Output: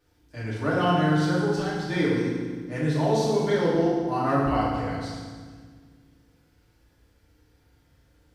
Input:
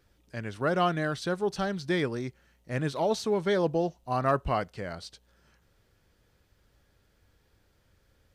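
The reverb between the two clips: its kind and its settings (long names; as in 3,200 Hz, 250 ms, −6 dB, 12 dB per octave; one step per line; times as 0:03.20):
feedback delay network reverb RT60 1.6 s, low-frequency decay 1.6×, high-frequency decay 0.85×, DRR −8.5 dB
level −6 dB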